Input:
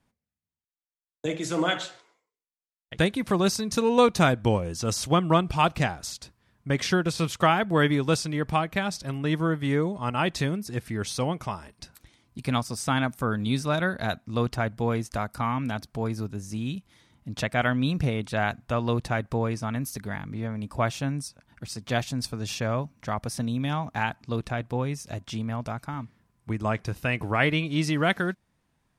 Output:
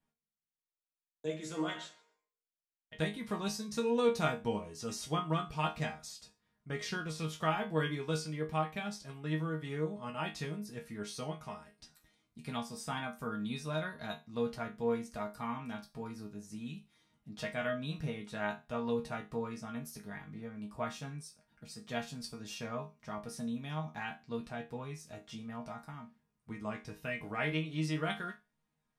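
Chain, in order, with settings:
resonators tuned to a chord D#3 sus4, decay 0.26 s
level +3 dB

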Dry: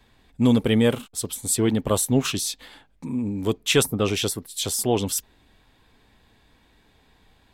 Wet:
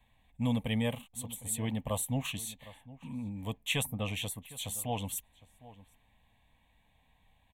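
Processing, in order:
phaser with its sweep stopped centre 1,400 Hz, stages 6
slap from a distant wall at 130 metres, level −18 dB
level −7.5 dB

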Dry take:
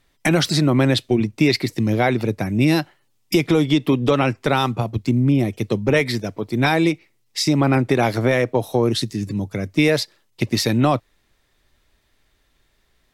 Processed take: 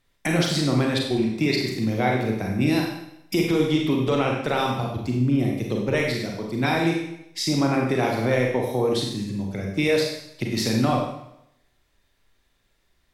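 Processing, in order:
four-comb reverb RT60 0.78 s, combs from 32 ms, DRR −0.5 dB
level −7 dB

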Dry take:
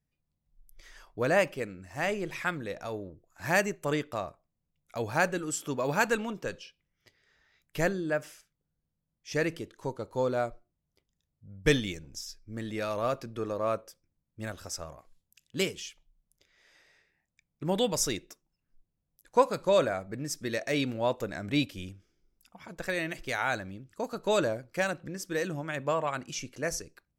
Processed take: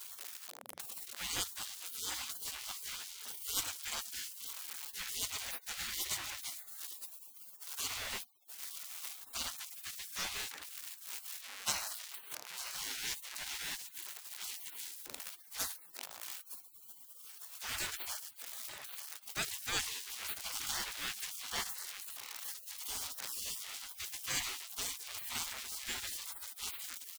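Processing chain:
converter with a step at zero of −33.5 dBFS
mains-hum notches 60/120/180/240 Hz
repeating echo 909 ms, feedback 45%, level −13.5 dB
gate on every frequency bin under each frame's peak −30 dB weak
level +6.5 dB

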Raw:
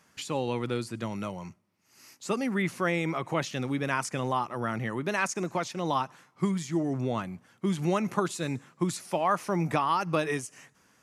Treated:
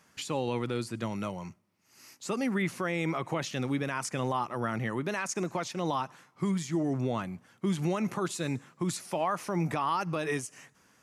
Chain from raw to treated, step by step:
brickwall limiter −20.5 dBFS, peak gain reduction 9 dB

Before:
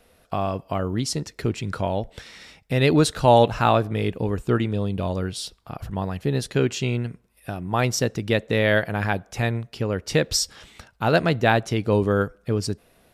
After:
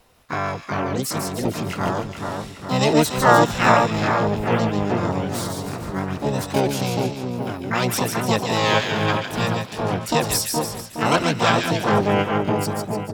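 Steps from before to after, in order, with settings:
echo with a time of its own for lows and highs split 1,300 Hz, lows 417 ms, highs 148 ms, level −4.5 dB
pitch-shifted copies added +7 semitones −2 dB, +12 semitones −2 dB
level −3 dB

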